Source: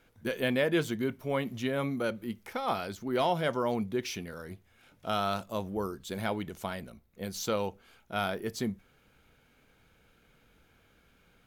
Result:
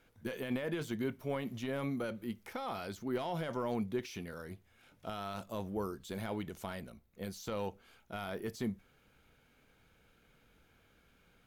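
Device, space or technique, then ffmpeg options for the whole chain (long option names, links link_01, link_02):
de-esser from a sidechain: -filter_complex "[0:a]asplit=2[link_01][link_02];[link_02]highpass=frequency=5900:poles=1,apad=whole_len=505809[link_03];[link_01][link_03]sidechaincompress=threshold=-46dB:ratio=8:attack=1.7:release=23,volume=-3dB"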